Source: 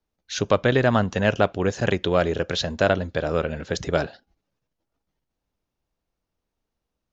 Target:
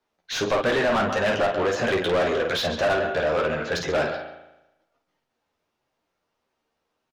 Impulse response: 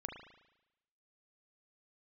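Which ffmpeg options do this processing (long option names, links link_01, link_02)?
-filter_complex "[0:a]flanger=delay=7.6:depth=4:regen=48:speed=1.7:shape=sinusoidal,aecho=1:1:13|52:0.473|0.376,asplit=2[link_01][link_02];[1:a]atrim=start_sample=2205,adelay=137[link_03];[link_02][link_03]afir=irnorm=-1:irlink=0,volume=-13dB[link_04];[link_01][link_04]amix=inputs=2:normalize=0,asplit=2[link_05][link_06];[link_06]highpass=frequency=720:poles=1,volume=28dB,asoftclip=type=tanh:threshold=-6.5dB[link_07];[link_05][link_07]amix=inputs=2:normalize=0,lowpass=frequency=2400:poles=1,volume=-6dB,volume=-7dB"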